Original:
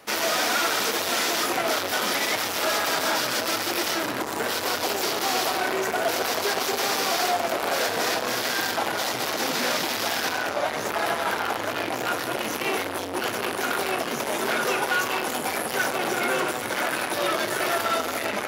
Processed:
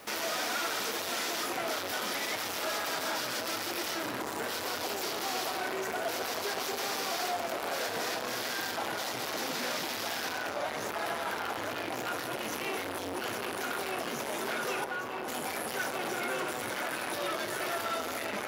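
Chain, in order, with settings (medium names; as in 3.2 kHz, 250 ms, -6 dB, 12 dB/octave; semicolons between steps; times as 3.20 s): word length cut 10-bit, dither triangular; peak limiter -26 dBFS, peak gain reduction 9.5 dB; 14.84–15.28 s: treble shelf 2.2 kHz -11.5 dB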